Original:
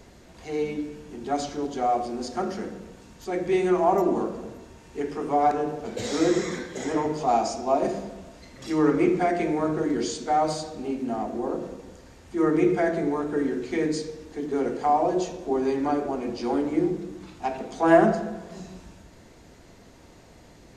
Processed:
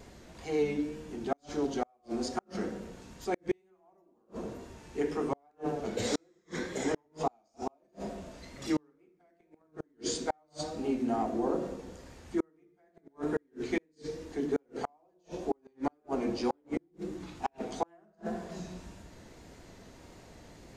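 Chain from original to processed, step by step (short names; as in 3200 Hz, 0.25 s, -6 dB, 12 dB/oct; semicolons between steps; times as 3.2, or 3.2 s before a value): flipped gate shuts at -17 dBFS, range -42 dB; wow and flutter 52 cents; gain -1.5 dB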